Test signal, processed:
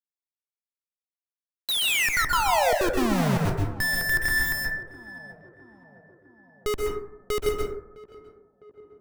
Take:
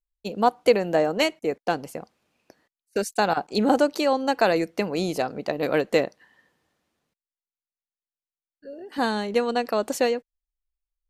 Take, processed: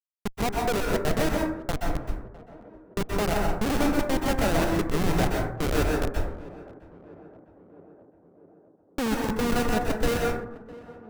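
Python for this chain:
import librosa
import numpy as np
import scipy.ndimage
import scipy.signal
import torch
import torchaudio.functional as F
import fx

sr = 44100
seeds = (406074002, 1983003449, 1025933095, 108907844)

p1 = fx.env_lowpass_down(x, sr, base_hz=1900.0, full_db=-15.0)
p2 = scipy.signal.sosfilt(scipy.signal.butter(4, 4400.0, 'lowpass', fs=sr, output='sos'), p1)
p3 = fx.over_compress(p2, sr, threshold_db=-25.0, ratio=-0.5)
p4 = p2 + (p3 * 10.0 ** (-3.0 / 20.0))
p5 = np.sign(p4) * np.maximum(np.abs(p4) - 10.0 ** (-43.0 / 20.0), 0.0)
p6 = fx.step_gate(p5, sr, bpm=187, pattern='xx.x.xxx', floor_db=-60.0, edge_ms=4.5)
p7 = fx.schmitt(p6, sr, flips_db=-19.0)
p8 = p7 + fx.echo_tape(p7, sr, ms=657, feedback_pct=75, wet_db=-16.5, lp_hz=1100.0, drive_db=18.0, wow_cents=20, dry=0)
y = fx.rev_plate(p8, sr, seeds[0], rt60_s=0.74, hf_ratio=0.35, predelay_ms=115, drr_db=-1.0)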